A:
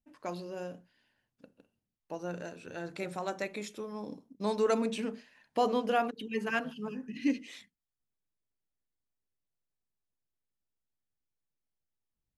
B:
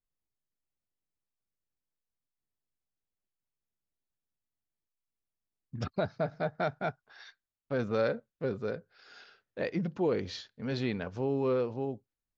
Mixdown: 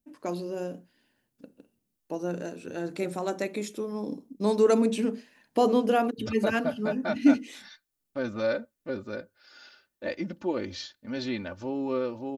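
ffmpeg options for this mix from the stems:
-filter_complex "[0:a]equalizer=f=300:t=o:w=1.8:g=10,volume=1[s0];[1:a]aecho=1:1:3.4:0.77,adelay=450,volume=0.841[s1];[s0][s1]amix=inputs=2:normalize=0,highshelf=f=6300:g=10"

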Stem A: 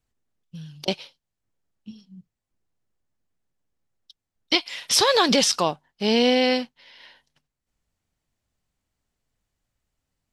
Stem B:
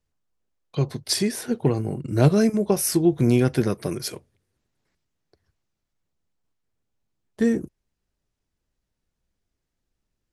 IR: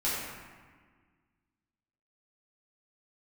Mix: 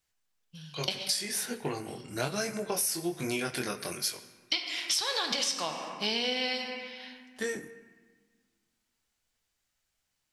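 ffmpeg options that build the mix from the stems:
-filter_complex "[0:a]volume=0.473,asplit=2[s0][s1];[s1]volume=0.266[s2];[1:a]lowshelf=f=320:g=-9,flanger=delay=19.5:depth=5.4:speed=1.2,volume=0.944,asplit=2[s3][s4];[s4]volume=0.1[s5];[2:a]atrim=start_sample=2205[s6];[s2][s5]amix=inputs=2:normalize=0[s7];[s7][s6]afir=irnorm=-1:irlink=0[s8];[s0][s3][s8]amix=inputs=3:normalize=0,tiltshelf=f=850:g=-7,acompressor=threshold=0.0447:ratio=8"

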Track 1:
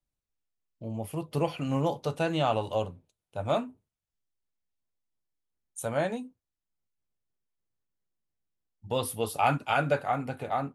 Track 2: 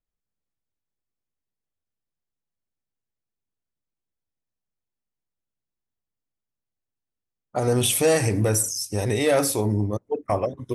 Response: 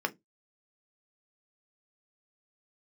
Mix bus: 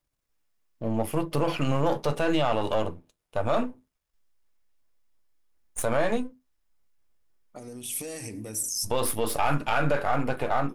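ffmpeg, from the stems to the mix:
-filter_complex "[0:a]aeval=exprs='if(lt(val(0),0),0.447*val(0),val(0))':c=same,asubboost=boost=3:cutoff=56,volume=1.06,asplit=3[s0][s1][s2];[s1]volume=0.355[s3];[1:a]equalizer=f=250:w=1.4:g=11.5,acompressor=threshold=0.0631:ratio=12,aexciter=amount=2.1:drive=7.1:freq=2100,volume=0.133,asplit=2[s4][s5];[s5]volume=0.0944[s6];[s2]apad=whole_len=473933[s7];[s4][s7]sidechaincompress=threshold=0.00251:ratio=3:attack=11:release=1160[s8];[2:a]atrim=start_sample=2205[s9];[s3][s6]amix=inputs=2:normalize=0[s10];[s10][s9]afir=irnorm=-1:irlink=0[s11];[s0][s8][s11]amix=inputs=3:normalize=0,acontrast=74,alimiter=limit=0.2:level=0:latency=1:release=46"

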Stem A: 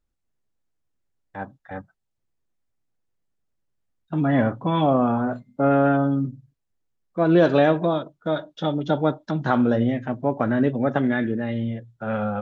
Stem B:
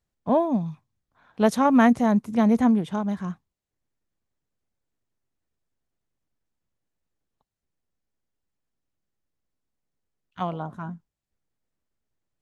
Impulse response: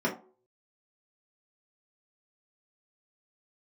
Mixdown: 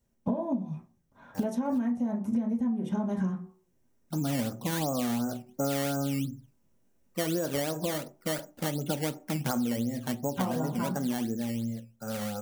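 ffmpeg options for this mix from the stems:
-filter_complex "[0:a]highshelf=f=3700:g=-11.5,acrusher=samples=12:mix=1:aa=0.000001:lfo=1:lforange=12:lforate=2.8,volume=0.335,asplit=2[s0][s1];[s1]volume=0.0841[s2];[1:a]acompressor=threshold=0.0398:ratio=6,volume=1.19,asplit=2[s3][s4];[s4]volume=0.447[s5];[2:a]atrim=start_sample=2205[s6];[s2][s5]amix=inputs=2:normalize=0[s7];[s7][s6]afir=irnorm=-1:irlink=0[s8];[s0][s3][s8]amix=inputs=3:normalize=0,dynaudnorm=f=500:g=9:m=1.78,crystalizer=i=1:c=0,acompressor=threshold=0.0501:ratio=12"

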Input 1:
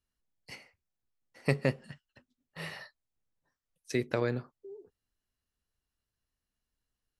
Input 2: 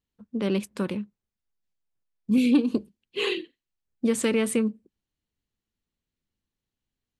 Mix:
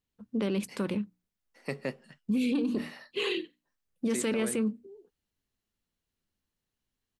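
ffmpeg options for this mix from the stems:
-filter_complex "[0:a]highpass=f=170:w=0.5412,highpass=f=170:w=1.3066,adelay=200,volume=0.668[s0];[1:a]bandreject=f=60:t=h:w=6,bandreject=f=120:t=h:w=6,bandreject=f=180:t=h:w=6,bandreject=f=240:t=h:w=6,bandreject=f=300:t=h:w=6,volume=1[s1];[s0][s1]amix=inputs=2:normalize=0,alimiter=limit=0.0794:level=0:latency=1:release=23"

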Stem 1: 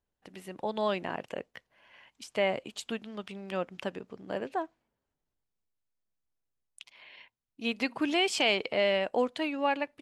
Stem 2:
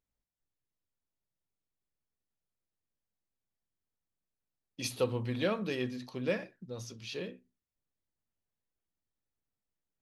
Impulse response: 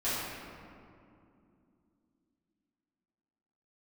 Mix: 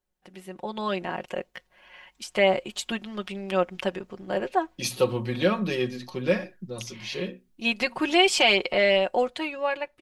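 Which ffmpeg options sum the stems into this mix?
-filter_complex "[0:a]asubboost=boost=6.5:cutoff=61,volume=0.891[s0];[1:a]volume=0.891[s1];[s0][s1]amix=inputs=2:normalize=0,aecho=1:1:5.5:0.68,dynaudnorm=f=340:g=7:m=2.24"

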